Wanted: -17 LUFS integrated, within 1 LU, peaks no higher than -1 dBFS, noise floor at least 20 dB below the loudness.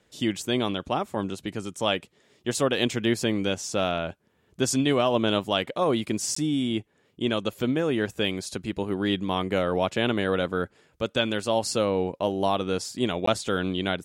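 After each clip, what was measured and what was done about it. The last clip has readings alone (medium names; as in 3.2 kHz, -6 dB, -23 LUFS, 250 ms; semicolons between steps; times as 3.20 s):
dropouts 2; longest dropout 14 ms; loudness -26.5 LUFS; peak level -9.0 dBFS; loudness target -17.0 LUFS
-> interpolate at 6.35/13.26 s, 14 ms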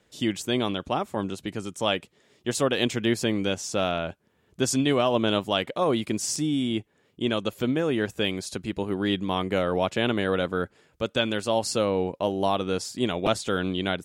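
dropouts 0; loudness -26.5 LUFS; peak level -9.0 dBFS; loudness target -17.0 LUFS
-> trim +9.5 dB; peak limiter -1 dBFS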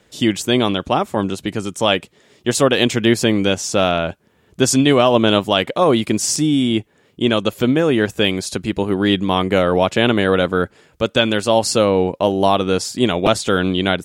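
loudness -17.0 LUFS; peak level -1.0 dBFS; noise floor -57 dBFS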